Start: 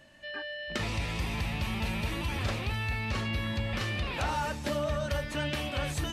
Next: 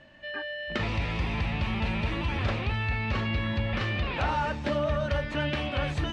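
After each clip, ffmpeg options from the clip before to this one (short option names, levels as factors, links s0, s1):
-af "lowpass=3300,volume=1.5"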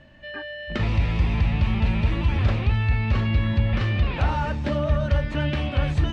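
-af "lowshelf=f=200:g=11"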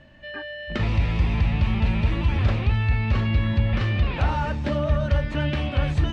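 -af anull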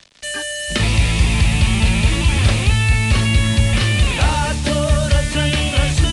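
-filter_complex "[0:a]acrusher=bits=6:mix=0:aa=0.5,acrossover=split=250|330|1700[s0][s1][s2][s3];[s3]crystalizer=i=6:c=0[s4];[s0][s1][s2][s4]amix=inputs=4:normalize=0,aresample=22050,aresample=44100,volume=2"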